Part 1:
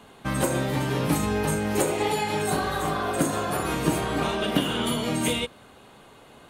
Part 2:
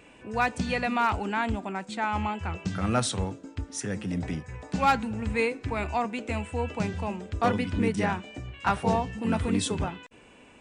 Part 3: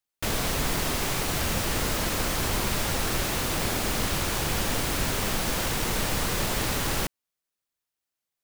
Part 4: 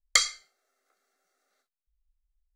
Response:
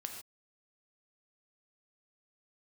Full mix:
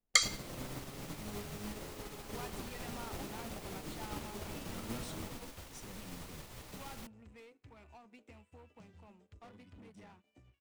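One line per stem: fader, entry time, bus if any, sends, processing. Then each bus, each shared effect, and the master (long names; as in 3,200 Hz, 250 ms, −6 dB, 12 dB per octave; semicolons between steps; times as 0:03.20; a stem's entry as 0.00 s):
−6.5 dB, 0.00 s, send −4.5 dB, brickwall limiter −19.5 dBFS, peak gain reduction 11 dB; pitch vibrato 1.2 Hz 39 cents; windowed peak hold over 33 samples
−9.5 dB, 2.00 s, no send, leveller curve on the samples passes 3; downward compressor 12 to 1, threshold −23 dBFS, peak gain reduction 7 dB
−6.5 dB, 0.00 s, no send, no processing
−3.5 dB, 0.00 s, no send, envelope flattener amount 50%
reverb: on, pre-delay 3 ms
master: parametric band 1,600 Hz −3.5 dB 0.22 octaves; expander for the loud parts 2.5 to 1, over −45 dBFS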